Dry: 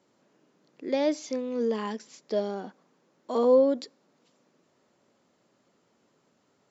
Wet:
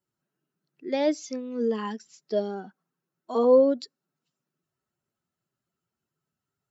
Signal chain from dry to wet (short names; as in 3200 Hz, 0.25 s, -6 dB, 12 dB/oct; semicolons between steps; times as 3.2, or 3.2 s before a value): per-bin expansion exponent 1.5; gain +3 dB